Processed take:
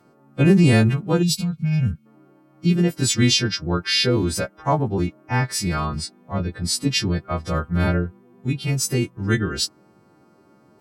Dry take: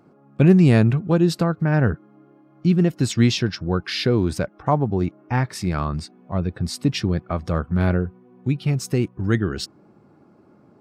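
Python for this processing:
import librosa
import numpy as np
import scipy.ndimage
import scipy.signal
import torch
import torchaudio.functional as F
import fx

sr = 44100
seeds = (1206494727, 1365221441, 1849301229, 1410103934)

y = fx.freq_snap(x, sr, grid_st=2)
y = fx.spec_box(y, sr, start_s=1.23, length_s=0.83, low_hz=250.0, high_hz=2100.0, gain_db=-21)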